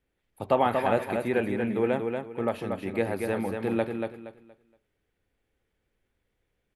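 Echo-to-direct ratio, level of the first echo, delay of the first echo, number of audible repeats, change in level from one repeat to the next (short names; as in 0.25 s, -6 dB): -4.5 dB, -5.0 dB, 0.235 s, 3, -11.5 dB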